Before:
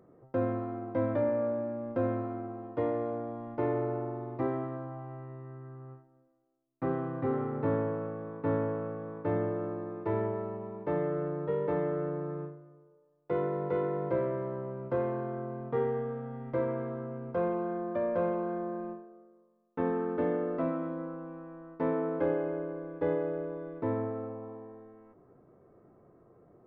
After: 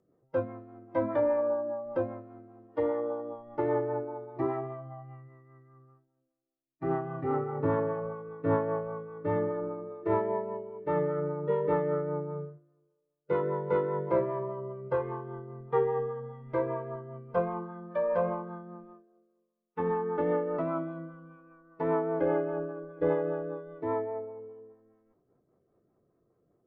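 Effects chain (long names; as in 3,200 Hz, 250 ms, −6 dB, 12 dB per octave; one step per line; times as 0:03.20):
noise reduction from a noise print of the clip's start 14 dB
dynamic equaliser 980 Hz, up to +8 dB, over −51 dBFS, Q 1.4
rotating-speaker cabinet horn 5 Hz
level +3.5 dB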